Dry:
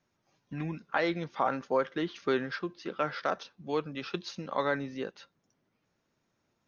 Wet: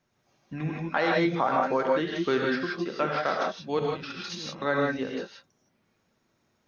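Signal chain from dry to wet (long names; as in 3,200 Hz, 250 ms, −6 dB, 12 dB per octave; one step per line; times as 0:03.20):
0:03.79–0:04.62: compressor whose output falls as the input rises −46 dBFS, ratio −1
reverb whose tail is shaped and stops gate 190 ms rising, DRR −1.5 dB
level +2 dB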